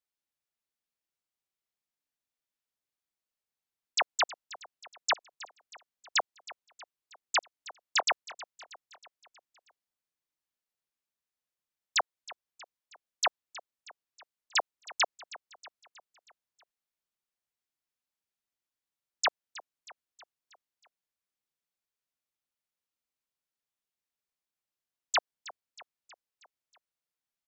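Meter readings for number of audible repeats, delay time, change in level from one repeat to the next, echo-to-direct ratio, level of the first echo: 4, 0.318 s, -5.5 dB, -16.5 dB, -18.0 dB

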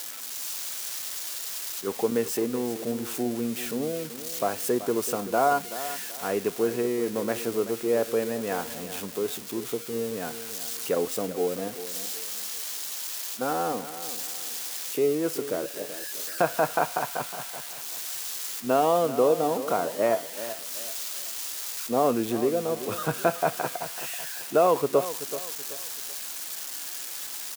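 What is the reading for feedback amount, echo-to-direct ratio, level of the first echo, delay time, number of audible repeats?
35%, -12.5 dB, -13.0 dB, 0.381 s, 3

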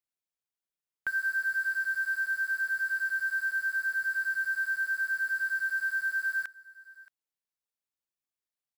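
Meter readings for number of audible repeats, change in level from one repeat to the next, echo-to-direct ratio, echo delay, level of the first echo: 1, no steady repeat, -21.5 dB, 0.624 s, -21.5 dB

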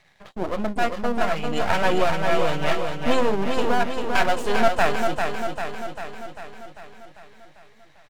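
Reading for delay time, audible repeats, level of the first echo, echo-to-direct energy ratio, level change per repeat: 0.396 s, 7, -5.0 dB, -3.0 dB, -4.5 dB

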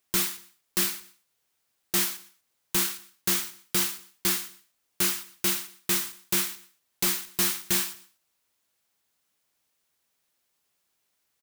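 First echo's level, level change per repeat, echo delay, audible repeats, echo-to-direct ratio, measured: -17.5 dB, -12.5 dB, 0.119 s, 2, -17.5 dB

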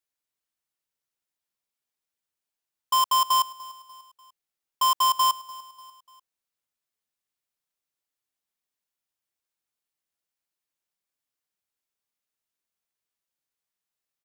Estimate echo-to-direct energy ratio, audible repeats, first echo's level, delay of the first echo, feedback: -19.0 dB, 3, -20.0 dB, 0.295 s, 46%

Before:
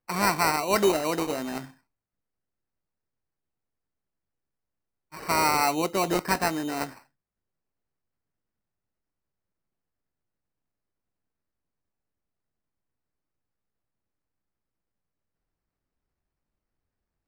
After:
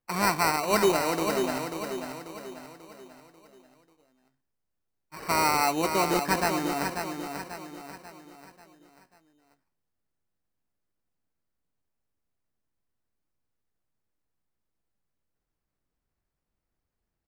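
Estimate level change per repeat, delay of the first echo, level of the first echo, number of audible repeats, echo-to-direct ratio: -7.0 dB, 0.54 s, -6.5 dB, 4, -5.5 dB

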